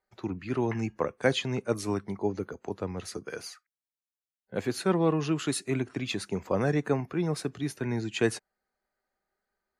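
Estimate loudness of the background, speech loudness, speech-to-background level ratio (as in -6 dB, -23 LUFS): -47.0 LUFS, -30.5 LUFS, 16.5 dB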